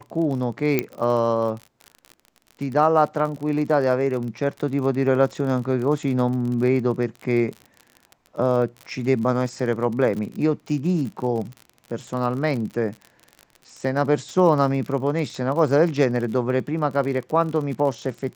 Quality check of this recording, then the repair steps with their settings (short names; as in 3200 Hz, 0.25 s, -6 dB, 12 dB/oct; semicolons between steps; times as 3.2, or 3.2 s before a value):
crackle 46/s -30 dBFS
0.79 pop -7 dBFS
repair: de-click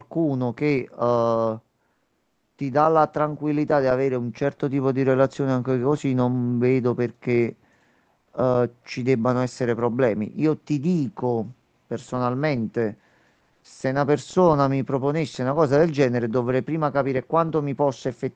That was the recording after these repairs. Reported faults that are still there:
none